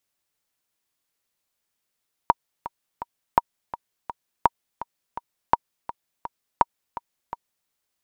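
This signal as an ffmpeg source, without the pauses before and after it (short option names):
-f lavfi -i "aevalsrc='pow(10,(-2-15.5*gte(mod(t,3*60/167),60/167))/20)*sin(2*PI*945*mod(t,60/167))*exp(-6.91*mod(t,60/167)/0.03)':d=5.38:s=44100"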